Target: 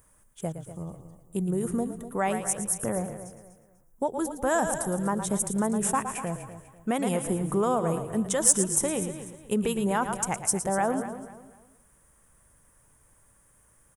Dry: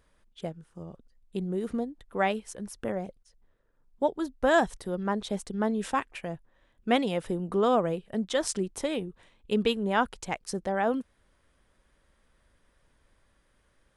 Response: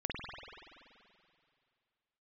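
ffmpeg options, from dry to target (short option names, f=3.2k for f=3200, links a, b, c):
-filter_complex "[0:a]equalizer=f=125:t=o:w=1:g=9,equalizer=f=1k:t=o:w=1:g=5,equalizer=f=4k:t=o:w=1:g=-6,asplit=2[a][b];[b]asplit=4[c][d][e][f];[c]adelay=113,afreqshift=-30,volume=-11dB[g];[d]adelay=226,afreqshift=-60,volume=-20.4dB[h];[e]adelay=339,afreqshift=-90,volume=-29.7dB[i];[f]adelay=452,afreqshift=-120,volume=-39.1dB[j];[g][h][i][j]amix=inputs=4:normalize=0[k];[a][k]amix=inputs=2:normalize=0,alimiter=limit=-16.5dB:level=0:latency=1:release=114,asplit=2[l][m];[m]aecho=0:1:247|494|741:0.224|0.0694|0.0215[n];[l][n]amix=inputs=2:normalize=0,aexciter=amount=5.2:drive=8.5:freq=6.3k"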